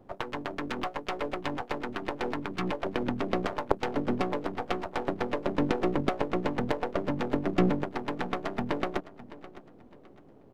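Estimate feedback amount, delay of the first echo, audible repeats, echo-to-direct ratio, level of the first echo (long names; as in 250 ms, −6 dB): 32%, 610 ms, 2, −16.5 dB, −17.0 dB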